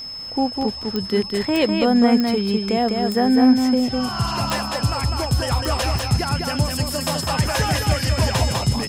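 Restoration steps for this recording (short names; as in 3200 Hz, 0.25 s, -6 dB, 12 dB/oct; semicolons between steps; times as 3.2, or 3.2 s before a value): de-click; notch 5200 Hz, Q 30; inverse comb 0.202 s -4 dB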